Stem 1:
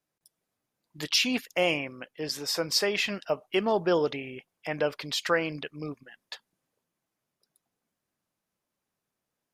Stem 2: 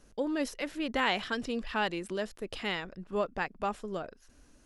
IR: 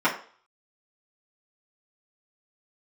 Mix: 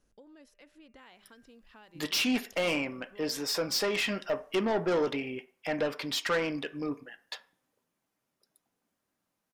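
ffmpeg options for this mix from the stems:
-filter_complex "[0:a]asoftclip=type=tanh:threshold=-26dB,adelay=1000,volume=0.5dB,asplit=2[a][b];[b]volume=-21.5dB[c];[1:a]bandreject=f=199.2:t=h:w=4,bandreject=f=398.4:t=h:w=4,bandreject=f=597.6:t=h:w=4,bandreject=f=796.8:t=h:w=4,bandreject=f=996:t=h:w=4,bandreject=f=1.1952k:t=h:w=4,bandreject=f=1.3944k:t=h:w=4,bandreject=f=1.5936k:t=h:w=4,bandreject=f=1.7928k:t=h:w=4,bandreject=f=1.992k:t=h:w=4,bandreject=f=2.1912k:t=h:w=4,bandreject=f=2.3904k:t=h:w=4,bandreject=f=2.5896k:t=h:w=4,bandreject=f=2.7888k:t=h:w=4,acompressor=threshold=-43dB:ratio=3,volume=-13dB[d];[2:a]atrim=start_sample=2205[e];[c][e]afir=irnorm=-1:irlink=0[f];[a][d][f]amix=inputs=3:normalize=0"

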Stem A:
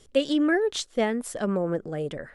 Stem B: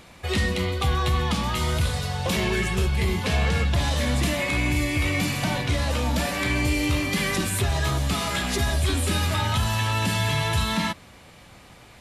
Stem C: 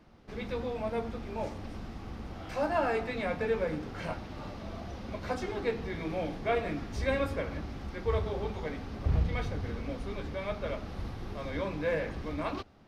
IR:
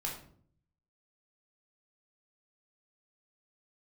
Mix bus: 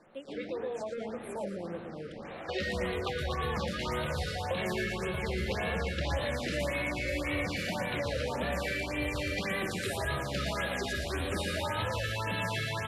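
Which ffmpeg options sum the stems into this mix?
-filter_complex "[0:a]volume=-13.5dB,afade=t=in:st=0.83:d=0.63:silence=0.421697,asplit=2[a][b];[b]volume=-8.5dB[c];[1:a]adelay=2250,volume=1.5dB,asplit=2[d][e];[e]volume=-17dB[f];[2:a]alimiter=level_in=4dB:limit=-24dB:level=0:latency=1:release=18,volume=-4dB,volume=0.5dB[g];[d][g]amix=inputs=2:normalize=0,highpass=200,equalizer=f=260:t=q:w=4:g=-6,equalizer=f=540:t=q:w=4:g=7,equalizer=f=1.7k:t=q:w=4:g=4,equalizer=f=3.4k:t=q:w=4:g=-3,lowpass=f=5.4k:w=0.5412,lowpass=f=5.4k:w=1.3066,acompressor=threshold=-34dB:ratio=3,volume=0dB[h];[c][f]amix=inputs=2:normalize=0,aecho=0:1:116|232|348|464|580|696|812:1|0.51|0.26|0.133|0.0677|0.0345|0.0176[i];[a][h][i]amix=inputs=3:normalize=0,afftfilt=real='re*(1-between(b*sr/1024,840*pow(6200/840,0.5+0.5*sin(2*PI*1.8*pts/sr))/1.41,840*pow(6200/840,0.5+0.5*sin(2*PI*1.8*pts/sr))*1.41))':imag='im*(1-between(b*sr/1024,840*pow(6200/840,0.5+0.5*sin(2*PI*1.8*pts/sr))/1.41,840*pow(6200/840,0.5+0.5*sin(2*PI*1.8*pts/sr))*1.41))':win_size=1024:overlap=0.75"

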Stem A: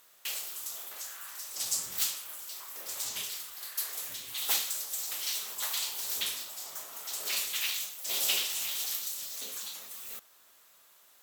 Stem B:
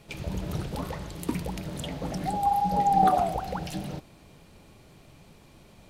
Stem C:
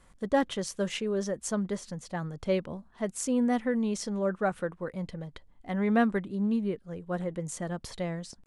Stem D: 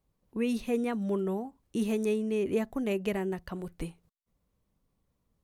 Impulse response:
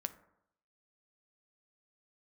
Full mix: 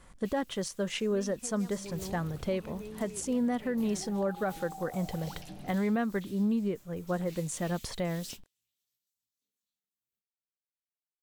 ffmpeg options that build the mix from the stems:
-filter_complex "[0:a]asubboost=boost=10.5:cutoff=210,flanger=delay=17:depth=6.7:speed=0.45,volume=-14.5dB[a];[1:a]acompressor=threshold=-28dB:ratio=6,adelay=1750,volume=-11dB[b];[2:a]acontrast=31,volume=-1.5dB,asplit=2[c][d];[3:a]alimiter=level_in=2dB:limit=-24dB:level=0:latency=1:release=499,volume=-2dB,adelay=750,volume=-8dB[e];[d]apad=whole_len=495187[f];[a][f]sidechaingate=range=-34dB:threshold=-43dB:ratio=16:detection=peak[g];[g][b][c][e]amix=inputs=4:normalize=0,alimiter=limit=-22dB:level=0:latency=1:release=471"

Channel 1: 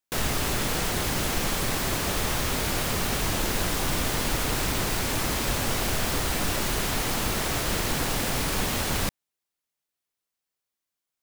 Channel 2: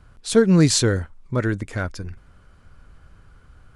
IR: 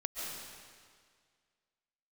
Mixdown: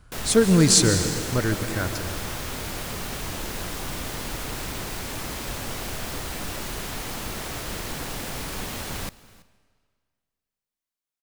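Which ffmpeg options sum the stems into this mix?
-filter_complex "[0:a]volume=-6dB,asplit=3[a][b][c];[b]volume=-23dB[d];[c]volume=-21.5dB[e];[1:a]highshelf=f=4.7k:g=9.5,volume=-5.5dB,asplit=2[f][g];[g]volume=-5dB[h];[2:a]atrim=start_sample=2205[i];[d][h]amix=inputs=2:normalize=0[j];[j][i]afir=irnorm=-1:irlink=0[k];[e]aecho=0:1:331:1[l];[a][f][k][l]amix=inputs=4:normalize=0"

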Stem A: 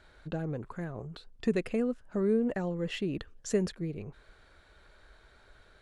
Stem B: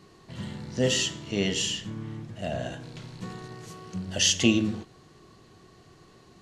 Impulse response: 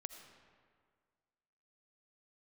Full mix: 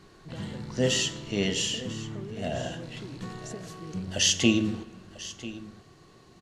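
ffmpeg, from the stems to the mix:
-filter_complex "[0:a]acompressor=threshold=-36dB:ratio=6,volume=-3.5dB[a];[1:a]volume=-2.5dB,asplit=3[b][c][d];[c]volume=-7dB[e];[d]volume=-14.5dB[f];[2:a]atrim=start_sample=2205[g];[e][g]afir=irnorm=-1:irlink=0[h];[f]aecho=0:1:994:1[i];[a][b][h][i]amix=inputs=4:normalize=0"

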